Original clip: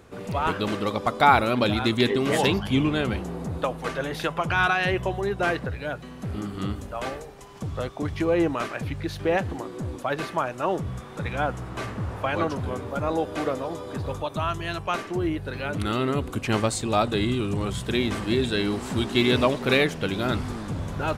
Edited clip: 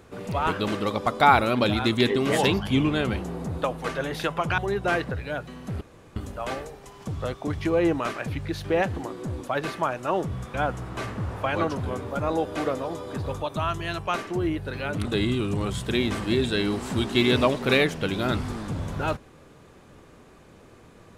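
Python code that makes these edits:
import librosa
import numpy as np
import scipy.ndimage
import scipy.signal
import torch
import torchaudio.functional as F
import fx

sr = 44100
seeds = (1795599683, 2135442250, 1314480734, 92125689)

y = fx.edit(x, sr, fx.cut(start_s=4.58, length_s=0.55),
    fx.room_tone_fill(start_s=6.36, length_s=0.35),
    fx.cut(start_s=11.09, length_s=0.25),
    fx.cut(start_s=15.85, length_s=1.2), tone=tone)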